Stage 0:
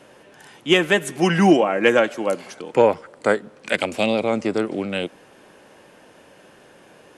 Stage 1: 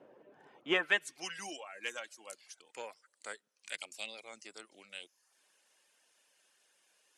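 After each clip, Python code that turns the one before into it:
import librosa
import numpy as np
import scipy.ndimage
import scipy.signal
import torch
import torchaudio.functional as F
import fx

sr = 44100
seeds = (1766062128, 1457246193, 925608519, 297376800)

y = fx.dereverb_blind(x, sr, rt60_s=0.58)
y = fx.filter_sweep_bandpass(y, sr, from_hz=440.0, to_hz=7900.0, start_s=0.45, end_s=1.32, q=0.87)
y = y * librosa.db_to_amplitude(-7.5)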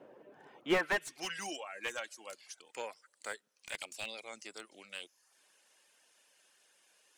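y = fx.slew_limit(x, sr, full_power_hz=47.0)
y = y * librosa.db_to_amplitude(3.0)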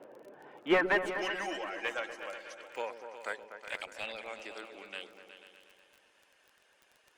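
y = fx.bass_treble(x, sr, bass_db=-6, treble_db=-14)
y = fx.dmg_crackle(y, sr, seeds[0], per_s=21.0, level_db=-50.0)
y = fx.echo_opening(y, sr, ms=122, hz=400, octaves=2, feedback_pct=70, wet_db=-6)
y = y * librosa.db_to_amplitude(4.5)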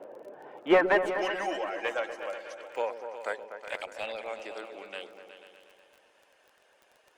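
y = fx.peak_eq(x, sr, hz=610.0, db=8.0, octaves=1.6)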